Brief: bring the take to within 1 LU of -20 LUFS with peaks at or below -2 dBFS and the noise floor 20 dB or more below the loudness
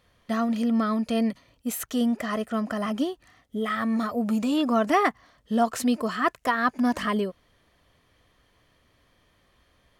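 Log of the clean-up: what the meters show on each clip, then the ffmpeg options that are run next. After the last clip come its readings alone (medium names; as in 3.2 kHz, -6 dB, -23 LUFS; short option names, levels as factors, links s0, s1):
loudness -26.0 LUFS; peak level -10.5 dBFS; loudness target -20.0 LUFS
-> -af "volume=2"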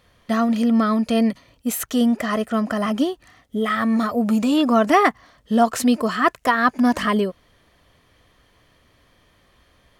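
loudness -20.0 LUFS; peak level -4.5 dBFS; noise floor -59 dBFS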